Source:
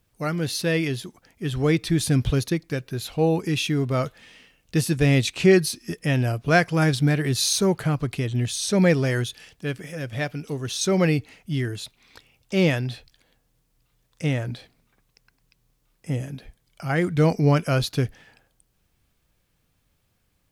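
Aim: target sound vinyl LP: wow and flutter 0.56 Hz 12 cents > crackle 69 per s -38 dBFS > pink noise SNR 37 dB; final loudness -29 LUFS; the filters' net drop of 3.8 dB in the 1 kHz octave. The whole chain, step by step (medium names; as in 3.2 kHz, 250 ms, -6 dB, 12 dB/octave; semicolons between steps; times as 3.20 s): peaking EQ 1 kHz -6 dB; wow and flutter 0.56 Hz 12 cents; crackle 69 per s -38 dBFS; pink noise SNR 37 dB; trim -5 dB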